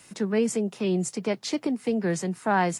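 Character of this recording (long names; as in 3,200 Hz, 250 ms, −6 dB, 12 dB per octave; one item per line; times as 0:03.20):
tremolo saw up 1.8 Hz, depth 35%
a quantiser's noise floor 12 bits, dither none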